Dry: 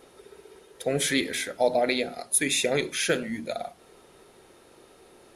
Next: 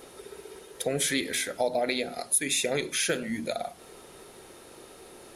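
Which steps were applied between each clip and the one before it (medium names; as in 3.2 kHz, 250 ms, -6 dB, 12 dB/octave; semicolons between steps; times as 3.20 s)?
treble shelf 6.1 kHz +6 dB; compression 2:1, threshold -35 dBFS, peak gain reduction 12 dB; trim +4.5 dB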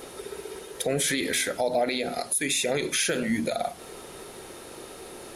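peak limiter -22.5 dBFS, peak gain reduction 11 dB; trim +6.5 dB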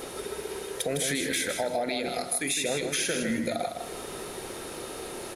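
compression 2:1, threshold -35 dBFS, peak gain reduction 8 dB; feedback delay 157 ms, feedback 21%, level -6.5 dB; trim +3.5 dB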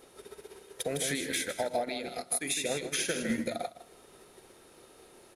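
upward expansion 2.5:1, over -38 dBFS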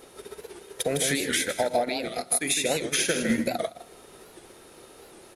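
warped record 78 rpm, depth 160 cents; trim +6.5 dB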